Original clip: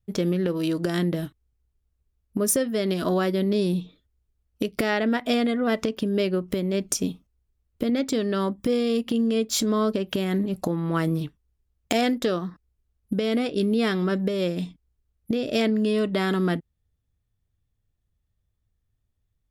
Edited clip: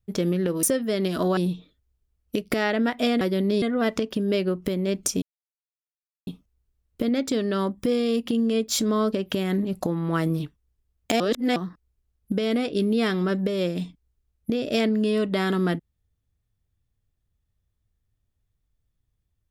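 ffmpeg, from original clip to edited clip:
-filter_complex "[0:a]asplit=8[s0][s1][s2][s3][s4][s5][s6][s7];[s0]atrim=end=0.632[s8];[s1]atrim=start=2.488:end=3.232[s9];[s2]atrim=start=3.638:end=5.482[s10];[s3]atrim=start=3.228:end=3.642[s11];[s4]atrim=start=5.478:end=7.08,asetpts=PTS-STARTPTS,afade=t=out:st=1.598:d=0.004:c=hsin,apad=pad_dur=1.05[s12];[s5]atrim=start=7.08:end=12.012,asetpts=PTS-STARTPTS,afade=t=in:d=0.004:c=hsin[s13];[s6]atrim=start=12.008:end=12.372,asetpts=PTS-STARTPTS,areverse[s14];[s7]atrim=start=12.368[s15];[s8][s9]acrossfade=d=0.004:c1=hsin:c2=hsin[s16];[s16][s10]acrossfade=d=0.004:c1=hsin:c2=hsin[s17];[s17][s11]acrossfade=d=0.004:c1=hsin:c2=hsin[s18];[s12][s13]concat=n=2:v=0:a=1[s19];[s18][s19]acrossfade=d=0.004:c1=hsin:c2=hsin[s20];[s20][s14]acrossfade=d=0.004:c1=hsin:c2=hsin[s21];[s21][s15]acrossfade=d=0.004:c1=hsin:c2=hsin"

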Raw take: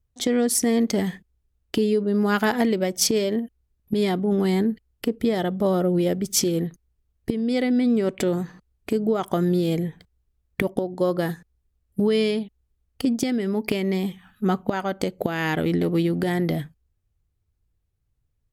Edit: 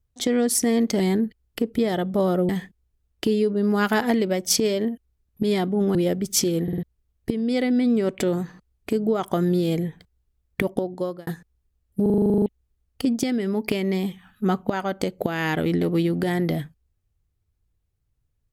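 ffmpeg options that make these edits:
-filter_complex "[0:a]asplit=20[s0][s1][s2][s3][s4][s5][s6][s7][s8][s9][s10][s11][s12][s13][s14][s15][s16][s17][s18][s19];[s0]atrim=end=1.002[s20];[s1]atrim=start=4.458:end=5.952[s21];[s2]atrim=start=0.998:end=4.462[s22];[s3]atrim=start=5.948:end=6.682[s23];[s4]atrim=start=6.628:end=6.682[s24];[s5]atrim=start=6.628:end=6.682[s25];[s6]atrim=start=6.628:end=6.682[s26];[s7]atrim=start=6.828:end=11.27,asetpts=PTS-STARTPTS,afade=t=out:st=4.032:d=0.41[s27];[s8]atrim=start=11.27:end=12.062,asetpts=PTS-STARTPTS,afade=t=in:d=0.004:c=hsin[s28];[s9]atrim=start=12.018:end=12.062[s29];[s10]atrim=start=12.018:end=12.062[s30];[s11]atrim=start=12.018:end=12.062[s31];[s12]atrim=start=12.018:end=12.062[s32];[s13]atrim=start=12.018:end=12.062[s33];[s14]atrim=start=12.018:end=12.062[s34];[s15]atrim=start=12.018:end=12.062[s35];[s16]atrim=start=12.018:end=12.062[s36];[s17]atrim=start=12.018:end=12.062[s37];[s18]atrim=start=12.018:end=12.062[s38];[s19]atrim=start=12.458[s39];[s20][s21]acrossfade=d=0.004:c1=hsin:c2=hsin[s40];[s40][s22]acrossfade=d=0.004:c1=hsin:c2=hsin[s41];[s41][s23]acrossfade=d=0.004:c1=hsin:c2=hsin[s42];[s42][s24]acrossfade=d=0.004:c1=hsin:c2=hsin[s43];[s43][s25]acrossfade=d=0.004:c1=hsin:c2=hsin[s44];[s44][s26]acrossfade=d=0.004:c1=hsin:c2=hsin[s45];[s27][s28]concat=n=2:v=0:a=1[s46];[s45][s46]acrossfade=d=0.004:c1=hsin:c2=hsin[s47];[s47][s29]acrossfade=d=0.004:c1=hsin:c2=hsin[s48];[s48][s30]acrossfade=d=0.004:c1=hsin:c2=hsin[s49];[s49][s31]acrossfade=d=0.004:c1=hsin:c2=hsin[s50];[s50][s32]acrossfade=d=0.004:c1=hsin:c2=hsin[s51];[s51][s33]acrossfade=d=0.004:c1=hsin:c2=hsin[s52];[s52][s34]acrossfade=d=0.004:c1=hsin:c2=hsin[s53];[s53][s35]acrossfade=d=0.004:c1=hsin:c2=hsin[s54];[s54][s36]acrossfade=d=0.004:c1=hsin:c2=hsin[s55];[s55][s37]acrossfade=d=0.004:c1=hsin:c2=hsin[s56];[s56][s38]acrossfade=d=0.004:c1=hsin:c2=hsin[s57];[s57][s39]acrossfade=d=0.004:c1=hsin:c2=hsin"

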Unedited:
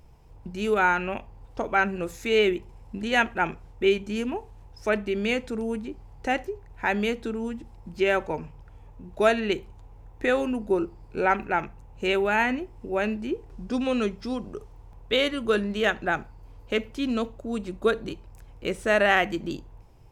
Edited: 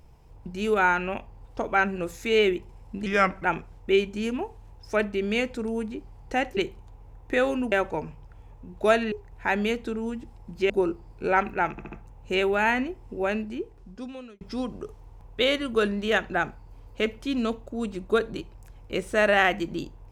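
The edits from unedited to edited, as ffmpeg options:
-filter_complex "[0:a]asplit=11[s0][s1][s2][s3][s4][s5][s6][s7][s8][s9][s10];[s0]atrim=end=3.064[s11];[s1]atrim=start=3.06:end=3.37,asetpts=PTS-STARTPTS,asetrate=36162,aresample=44100[s12];[s2]atrim=start=3.366:end=6.502[s13];[s3]atrim=start=9.478:end=10.632[s14];[s4]atrim=start=8.078:end=9.482[s15];[s5]atrim=start=6.498:end=8.082[s16];[s6]atrim=start=10.628:end=11.712[s17];[s7]atrim=start=11.638:end=11.712[s18];[s8]atrim=start=11.638:end=11.712[s19];[s9]atrim=start=11.638:end=14.13,asetpts=PTS-STARTPTS,afade=t=out:st=1.282:d=1.21[s20];[s10]atrim=start=14.13,asetpts=PTS-STARTPTS,afade=t=in:d=0.004:c=hsin[s21];[s11][s12]acrossfade=d=0.004:c1=hsin:c2=hsin[s22];[s22][s13]acrossfade=d=0.004:c1=hsin:c2=hsin[s23];[s23][s14]acrossfade=d=0.004:c1=hsin:c2=hsin[s24];[s24][s15]acrossfade=d=0.004:c1=hsin:c2=hsin[s25];[s25][s16]acrossfade=d=0.004:c1=hsin:c2=hsin[s26];[s26][s17]acrossfade=d=0.004:c1=hsin:c2=hsin[s27];[s27][s18]acrossfade=d=0.004:c1=hsin:c2=hsin[s28];[s28][s19]acrossfade=d=0.004:c1=hsin:c2=hsin[s29];[s20][s21]concat=n=2:v=0:a=1[s30];[s29][s30]acrossfade=d=0.004:c1=hsin:c2=hsin"

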